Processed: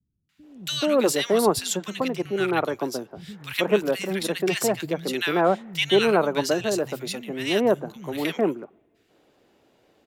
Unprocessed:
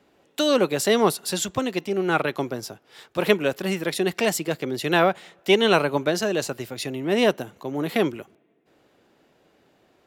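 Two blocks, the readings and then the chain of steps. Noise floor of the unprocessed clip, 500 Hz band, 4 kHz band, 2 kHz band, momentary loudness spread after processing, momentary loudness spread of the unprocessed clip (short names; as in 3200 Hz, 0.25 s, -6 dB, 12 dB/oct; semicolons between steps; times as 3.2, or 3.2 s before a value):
-63 dBFS, 0.0 dB, -0.5 dB, -2.0 dB, 10 LU, 11 LU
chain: three bands offset in time lows, highs, mids 0.29/0.43 s, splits 150/1500 Hz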